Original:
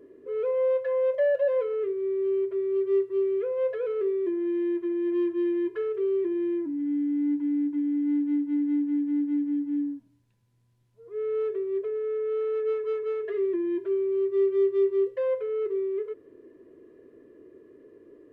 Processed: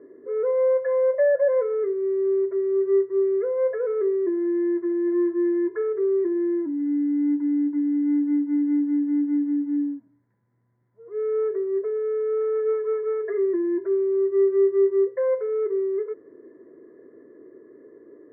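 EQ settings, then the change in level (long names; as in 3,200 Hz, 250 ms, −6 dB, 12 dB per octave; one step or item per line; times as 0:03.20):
high-pass filter 160 Hz 12 dB per octave
Butterworth low-pass 2,100 Hz 96 dB per octave
+4.0 dB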